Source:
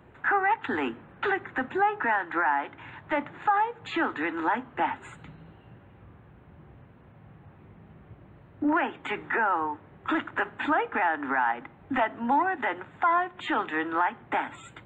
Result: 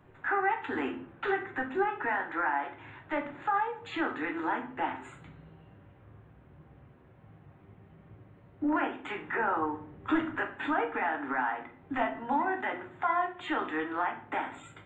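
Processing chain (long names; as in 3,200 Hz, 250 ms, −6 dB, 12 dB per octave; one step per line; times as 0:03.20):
0:09.40–0:10.36: low-shelf EQ 320 Hz +8 dB
rectangular room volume 44 cubic metres, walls mixed, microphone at 0.48 metres
level −6.5 dB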